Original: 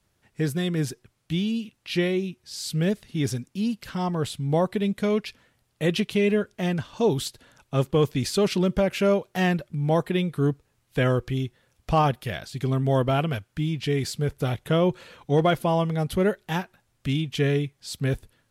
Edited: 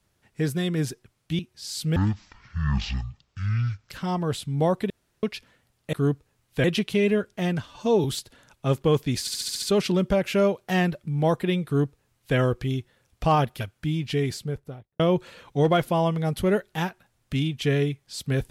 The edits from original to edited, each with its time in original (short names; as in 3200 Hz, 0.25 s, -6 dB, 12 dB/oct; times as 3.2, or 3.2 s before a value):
1.39–2.28 cut
2.85–3.82 speed 50%
4.82–5.15 room tone
6.88–7.13 stretch 1.5×
8.29 stutter 0.07 s, 7 plays
10.32–11.03 copy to 5.85
12.27–13.34 cut
13.88–14.73 studio fade out